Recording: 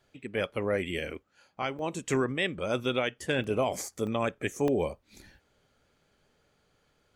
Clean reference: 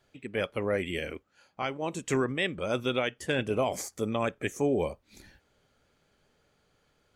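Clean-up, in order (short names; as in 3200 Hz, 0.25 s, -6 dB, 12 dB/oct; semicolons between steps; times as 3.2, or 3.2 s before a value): interpolate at 1.79/3.44/4.07/4.68, 1.1 ms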